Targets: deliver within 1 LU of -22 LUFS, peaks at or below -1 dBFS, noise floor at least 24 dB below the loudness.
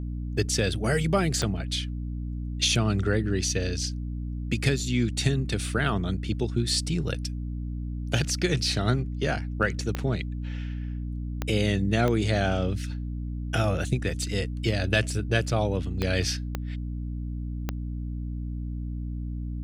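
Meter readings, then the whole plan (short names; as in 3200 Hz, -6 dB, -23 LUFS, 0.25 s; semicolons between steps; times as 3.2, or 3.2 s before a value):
clicks 7; hum 60 Hz; harmonics up to 300 Hz; hum level -29 dBFS; loudness -28.0 LUFS; peak -8.5 dBFS; loudness target -22.0 LUFS
-> de-click; notches 60/120/180/240/300 Hz; gain +6 dB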